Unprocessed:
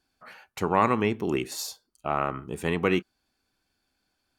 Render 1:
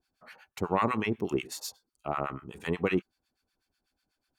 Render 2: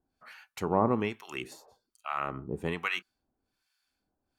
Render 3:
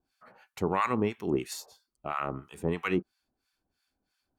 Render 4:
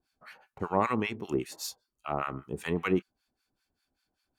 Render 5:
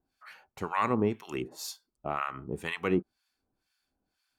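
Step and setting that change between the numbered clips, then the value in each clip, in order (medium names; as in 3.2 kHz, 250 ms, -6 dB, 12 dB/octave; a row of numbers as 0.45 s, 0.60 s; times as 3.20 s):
harmonic tremolo, rate: 8.1 Hz, 1.2 Hz, 3 Hz, 5.1 Hz, 2 Hz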